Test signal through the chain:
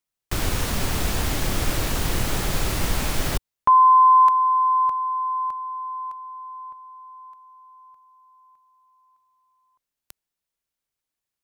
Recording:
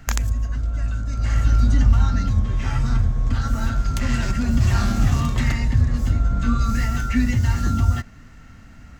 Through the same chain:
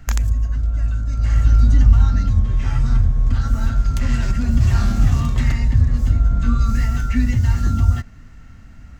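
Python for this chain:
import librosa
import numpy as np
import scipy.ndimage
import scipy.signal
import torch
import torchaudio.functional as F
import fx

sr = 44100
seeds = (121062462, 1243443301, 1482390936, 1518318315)

y = fx.low_shelf(x, sr, hz=120.0, db=8.0)
y = y * librosa.db_to_amplitude(-2.5)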